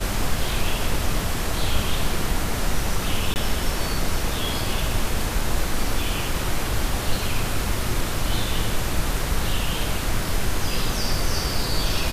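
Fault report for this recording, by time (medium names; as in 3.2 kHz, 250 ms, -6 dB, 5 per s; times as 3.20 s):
3.34–3.36 s: dropout 19 ms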